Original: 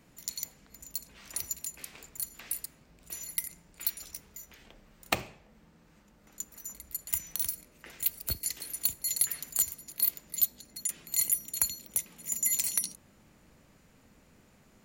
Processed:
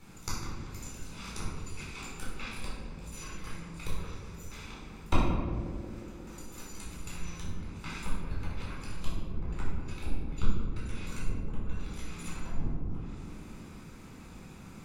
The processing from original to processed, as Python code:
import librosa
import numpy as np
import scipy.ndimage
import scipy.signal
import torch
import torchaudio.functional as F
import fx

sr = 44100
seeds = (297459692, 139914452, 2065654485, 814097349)

p1 = fx.lower_of_two(x, sr, delay_ms=0.82)
p2 = fx.auto_swell(p1, sr, attack_ms=126.0)
p3 = fx.env_lowpass_down(p2, sr, base_hz=350.0, full_db=-34.0)
p4 = p3 + fx.echo_banded(p3, sr, ms=179, feedback_pct=82, hz=390.0, wet_db=-7.5, dry=0)
p5 = fx.room_shoebox(p4, sr, seeds[0], volume_m3=560.0, walls='mixed', distance_m=4.2)
y = p5 * 10.0 ** (2.0 / 20.0)